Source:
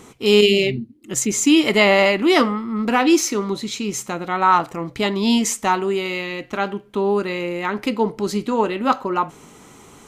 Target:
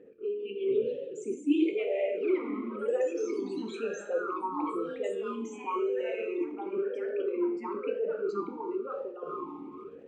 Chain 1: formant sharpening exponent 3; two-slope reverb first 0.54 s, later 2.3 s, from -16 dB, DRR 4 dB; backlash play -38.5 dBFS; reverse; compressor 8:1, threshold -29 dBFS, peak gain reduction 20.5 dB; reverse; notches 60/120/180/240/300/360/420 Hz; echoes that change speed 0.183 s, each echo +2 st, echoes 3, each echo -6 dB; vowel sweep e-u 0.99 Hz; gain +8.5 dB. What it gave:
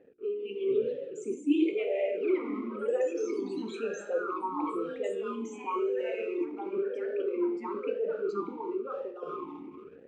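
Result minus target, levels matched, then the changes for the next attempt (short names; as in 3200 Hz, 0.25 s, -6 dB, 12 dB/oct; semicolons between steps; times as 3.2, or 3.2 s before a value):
backlash: distortion +11 dB
change: backlash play -50 dBFS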